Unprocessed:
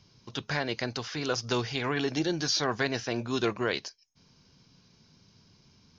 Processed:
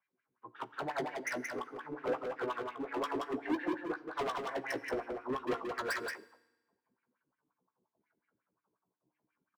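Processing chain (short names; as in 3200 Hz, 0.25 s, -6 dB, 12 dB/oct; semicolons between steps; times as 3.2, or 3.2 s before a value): HPF 120 Hz 6 dB/oct; LFO low-pass saw down 1.4 Hz 760–1900 Hz; in parallel at -6.5 dB: short-mantissa float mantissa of 2-bit; on the sum: plain phase-vocoder stretch 1.6×; wah 5.6 Hz 300–2400 Hz, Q 3.4; transient shaper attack +6 dB, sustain -4 dB; hard clip -33 dBFS, distortion -3 dB; doubler 16 ms -8.5 dB; on a send: echo 0.177 s -3.5 dB; on the sum: FDN reverb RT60 1.6 s, low-frequency decay 1.35×, high-frequency decay 1×, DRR 17.5 dB; three-band expander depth 40%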